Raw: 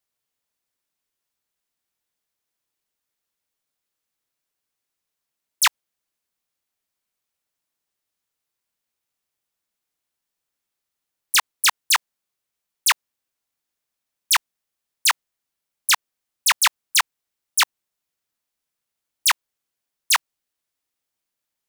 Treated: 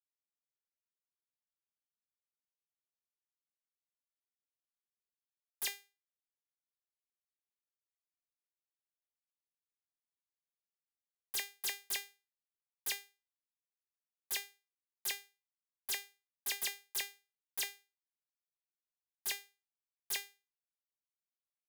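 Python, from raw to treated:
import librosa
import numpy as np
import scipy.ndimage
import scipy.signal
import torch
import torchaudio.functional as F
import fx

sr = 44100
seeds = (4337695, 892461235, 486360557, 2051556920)

y = 10.0 ** (-21.0 / 20.0) * (np.abs((x / 10.0 ** (-21.0 / 20.0) + 3.0) % 4.0 - 2.0) - 1.0)
y = fx.power_curve(y, sr, exponent=1.4)
y = fx.comb_fb(y, sr, f0_hz=400.0, decay_s=0.3, harmonics='all', damping=0.0, mix_pct=90)
y = y * librosa.db_to_amplitude(6.0)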